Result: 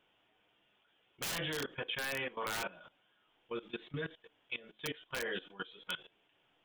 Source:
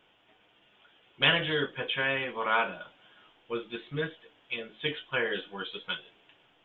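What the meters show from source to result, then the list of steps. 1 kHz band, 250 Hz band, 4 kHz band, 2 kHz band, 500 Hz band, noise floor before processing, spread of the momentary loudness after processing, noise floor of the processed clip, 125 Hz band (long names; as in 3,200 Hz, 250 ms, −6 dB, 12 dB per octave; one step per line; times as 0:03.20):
−10.5 dB, −7.5 dB, −10.0 dB, −10.0 dB, −9.0 dB, −65 dBFS, 8 LU, −74 dBFS, −8.0 dB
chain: wrap-around overflow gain 19.5 dB
output level in coarse steps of 18 dB
level −1.5 dB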